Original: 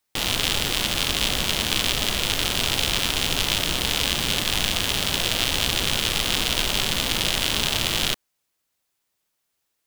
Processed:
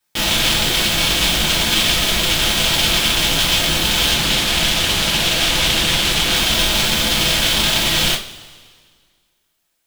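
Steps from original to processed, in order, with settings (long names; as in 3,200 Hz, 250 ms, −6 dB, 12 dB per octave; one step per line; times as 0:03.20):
coupled-rooms reverb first 0.26 s, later 1.8 s, from −21 dB, DRR −8 dB
0:04.15–0:06.36: highs frequency-modulated by the lows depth 0.21 ms
level −1.5 dB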